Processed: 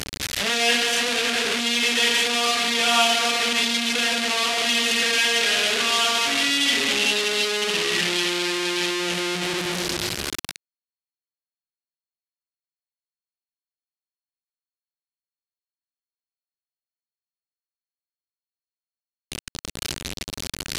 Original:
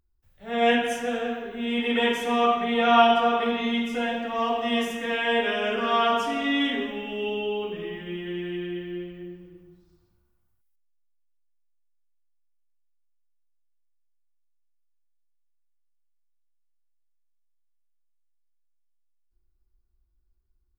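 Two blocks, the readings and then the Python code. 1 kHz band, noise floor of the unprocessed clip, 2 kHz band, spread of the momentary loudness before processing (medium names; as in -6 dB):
-2.5 dB, -69 dBFS, +8.0 dB, 12 LU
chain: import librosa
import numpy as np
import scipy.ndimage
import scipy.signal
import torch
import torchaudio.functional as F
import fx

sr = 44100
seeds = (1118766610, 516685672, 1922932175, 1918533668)

y = fx.delta_mod(x, sr, bps=64000, step_db=-16.0)
y = fx.weighting(y, sr, curve='D')
y = F.gain(torch.from_numpy(y), -5.0).numpy()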